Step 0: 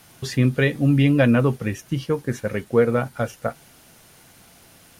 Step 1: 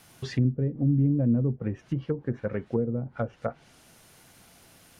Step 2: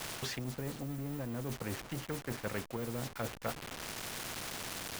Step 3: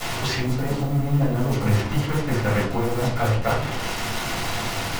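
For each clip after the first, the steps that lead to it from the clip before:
treble cut that deepens with the level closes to 300 Hz, closed at −17 dBFS; level −4.5 dB
hold until the input has moved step −49 dBFS; reversed playback; downward compressor, threshold −33 dBFS, peak gain reduction 13.5 dB; reversed playback; every bin compressed towards the loudest bin 2 to 1; level +1.5 dB
flanger 1.3 Hz, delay 8.1 ms, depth 7.9 ms, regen −48%; convolution reverb RT60 0.45 s, pre-delay 4 ms, DRR −7.5 dB; level +9 dB

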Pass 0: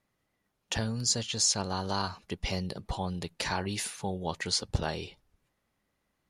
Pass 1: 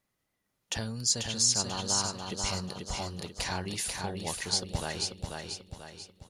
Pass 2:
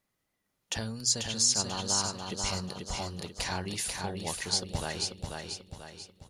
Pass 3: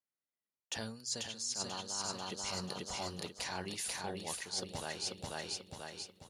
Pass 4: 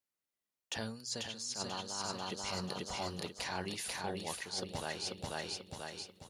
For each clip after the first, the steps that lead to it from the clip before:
high-shelf EQ 4,500 Hz +7.5 dB; on a send: repeating echo 489 ms, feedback 45%, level −4 dB; on the sum: level −4 dB
mains-hum notches 60/120 Hz
high-pass filter 240 Hz 6 dB per octave; noise gate with hold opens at −50 dBFS; reversed playback; downward compressor 10 to 1, threshold −37 dBFS, peak gain reduction 16 dB; reversed playback; level +1 dB
dynamic equaliser 7,700 Hz, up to −6 dB, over −51 dBFS, Q 0.88; level +2 dB

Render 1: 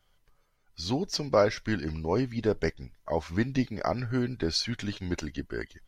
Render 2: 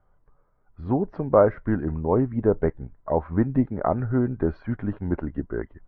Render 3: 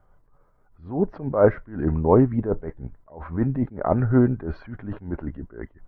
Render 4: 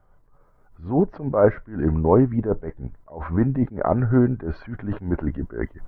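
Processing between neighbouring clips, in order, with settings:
low-pass filter 1,300 Hz 24 dB per octave; level +6 dB
level that may rise only so fast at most 140 dB per second; level +5.5 dB
camcorder AGC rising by 7.6 dB per second

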